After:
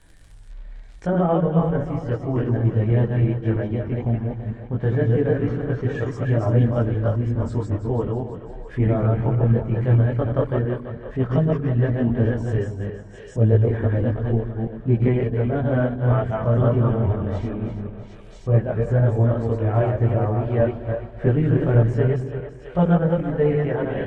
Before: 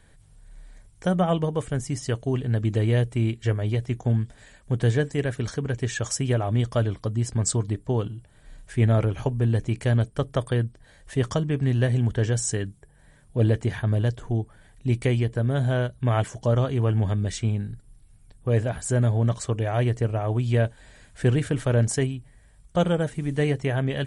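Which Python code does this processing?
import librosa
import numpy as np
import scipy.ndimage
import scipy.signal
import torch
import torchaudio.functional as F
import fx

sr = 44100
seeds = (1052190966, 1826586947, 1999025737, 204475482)

p1 = fx.reverse_delay(x, sr, ms=161, wet_db=-2)
p2 = fx.chorus_voices(p1, sr, voices=6, hz=0.14, base_ms=21, depth_ms=3.6, mix_pct=55)
p3 = fx.dmg_crackle(p2, sr, seeds[0], per_s=71.0, level_db=-45.0)
p4 = p3 + fx.echo_split(p3, sr, split_hz=380.0, low_ms=129, high_ms=332, feedback_pct=52, wet_db=-10.0, dry=0)
p5 = fx.env_lowpass_down(p4, sr, base_hz=1400.0, full_db=-34.5)
y = F.gain(torch.from_numpy(p5), 5.0).numpy()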